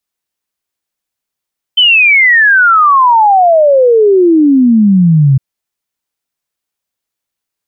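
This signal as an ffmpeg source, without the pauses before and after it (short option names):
-f lavfi -i "aevalsrc='0.668*clip(min(t,3.61-t)/0.01,0,1)*sin(2*PI*3100*3.61/log(130/3100)*(exp(log(130/3100)*t/3.61)-1))':d=3.61:s=44100"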